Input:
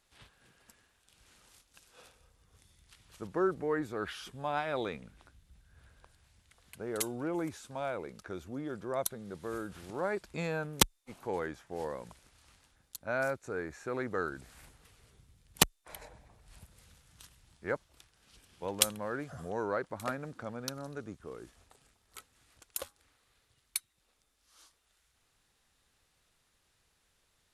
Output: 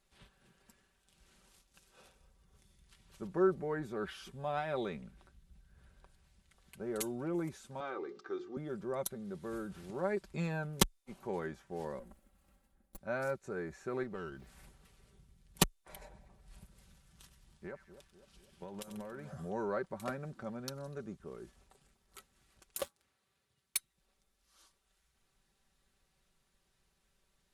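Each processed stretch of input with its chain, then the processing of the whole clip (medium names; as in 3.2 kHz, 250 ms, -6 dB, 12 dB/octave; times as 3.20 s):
7.80–8.57 s: cabinet simulation 290–5600 Hz, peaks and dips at 290 Hz +9 dB, 630 Hz -6 dB, 1.2 kHz +7 dB, 2.5 kHz -4 dB + hum notches 60/120/180/240/300/360/420/480/540 Hz + comb 2.5 ms, depth 62%
11.99–12.98 s: comb filter that takes the minimum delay 3.7 ms + FFT filter 600 Hz 0 dB, 5.4 kHz -13 dB, 12 kHz -2 dB
14.03–14.47 s: compression 1.5:1, threshold -46 dBFS + sliding maximum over 5 samples
17.22–19.33 s: compression, threshold -39 dBFS + two-band feedback delay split 1.1 kHz, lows 249 ms, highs 93 ms, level -11.5 dB
22.77–23.77 s: high-pass 74 Hz 24 dB/octave + waveshaping leveller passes 2
whole clip: bass shelf 490 Hz +6.5 dB; comb 5.2 ms, depth 56%; trim -6.5 dB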